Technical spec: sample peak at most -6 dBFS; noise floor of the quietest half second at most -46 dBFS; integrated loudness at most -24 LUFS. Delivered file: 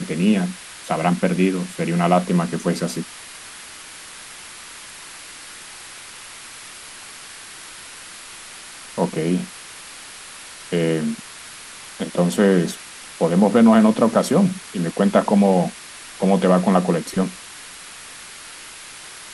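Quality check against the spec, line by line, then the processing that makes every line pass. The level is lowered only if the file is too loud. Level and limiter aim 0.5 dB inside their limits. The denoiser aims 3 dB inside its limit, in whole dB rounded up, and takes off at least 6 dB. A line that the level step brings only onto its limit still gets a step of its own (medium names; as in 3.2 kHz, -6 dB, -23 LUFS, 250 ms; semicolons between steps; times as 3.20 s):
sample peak -3.0 dBFS: fail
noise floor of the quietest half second -39 dBFS: fail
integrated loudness -19.5 LUFS: fail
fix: noise reduction 6 dB, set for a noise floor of -39 dBFS; trim -5 dB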